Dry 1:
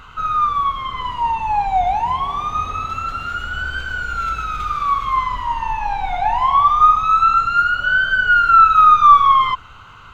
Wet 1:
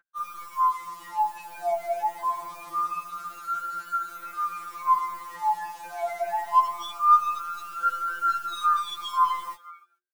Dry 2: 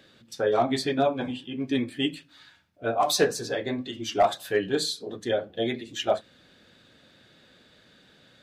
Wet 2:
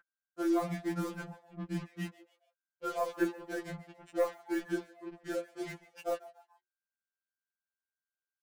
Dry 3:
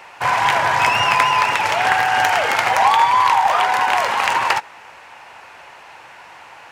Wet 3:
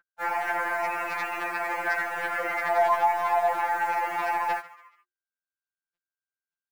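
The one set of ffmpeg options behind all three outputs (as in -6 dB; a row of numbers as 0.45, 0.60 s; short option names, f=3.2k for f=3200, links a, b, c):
-filter_complex "[0:a]anlmdn=25.1,equalizer=f=710:w=0.34:g=-5.5,asplit=2[a][b];[b]acompressor=threshold=-27dB:ratio=8,volume=-0.5dB[c];[a][c]amix=inputs=2:normalize=0,highpass=f=350:t=q:w=0.5412,highpass=f=350:t=q:w=1.307,lowpass=f=2.2k:t=q:w=0.5176,lowpass=f=2.2k:t=q:w=0.7071,lowpass=f=2.2k:t=q:w=1.932,afreqshift=-90,acrusher=bits=5:mix=0:aa=0.5,aeval=exprs='0.668*(cos(1*acos(clip(val(0)/0.668,-1,1)))-cos(1*PI/2))+0.00531*(cos(6*acos(clip(val(0)/0.668,-1,1)))-cos(6*PI/2))':c=same,asoftclip=type=hard:threshold=-11dB,asplit=4[d][e][f][g];[e]adelay=142,afreqshift=120,volume=-19dB[h];[f]adelay=284,afreqshift=240,volume=-26.5dB[i];[g]adelay=426,afreqshift=360,volume=-34.1dB[j];[d][h][i][j]amix=inputs=4:normalize=0,aeval=exprs='val(0)+0.00794*sin(2*PI*1500*n/s)':c=same,afftfilt=real='re*2.83*eq(mod(b,8),0)':imag='im*2.83*eq(mod(b,8),0)':win_size=2048:overlap=0.75,volume=-5dB"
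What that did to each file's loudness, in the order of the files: -11.5, -10.0, -11.0 LU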